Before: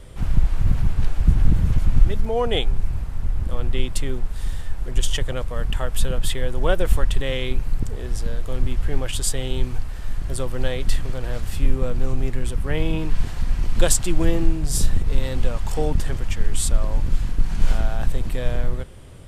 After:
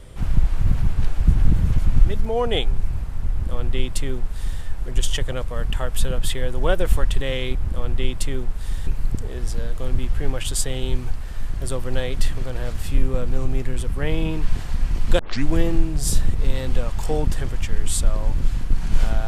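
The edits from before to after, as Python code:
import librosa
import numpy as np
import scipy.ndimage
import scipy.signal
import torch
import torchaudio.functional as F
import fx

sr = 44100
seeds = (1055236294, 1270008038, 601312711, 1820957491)

y = fx.edit(x, sr, fx.duplicate(start_s=3.3, length_s=1.32, to_s=7.55),
    fx.tape_start(start_s=13.87, length_s=0.28), tone=tone)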